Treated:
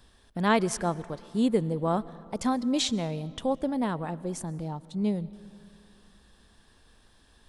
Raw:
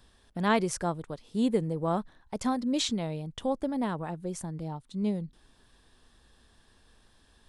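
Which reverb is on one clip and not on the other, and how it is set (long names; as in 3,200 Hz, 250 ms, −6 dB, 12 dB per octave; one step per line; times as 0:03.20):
comb and all-pass reverb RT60 2.6 s, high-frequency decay 0.6×, pre-delay 85 ms, DRR 19 dB
level +2 dB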